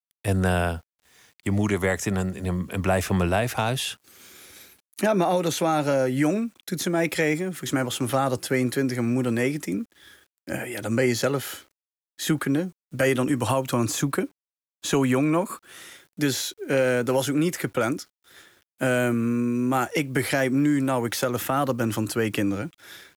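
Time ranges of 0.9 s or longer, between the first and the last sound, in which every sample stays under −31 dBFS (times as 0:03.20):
0:03.93–0:04.98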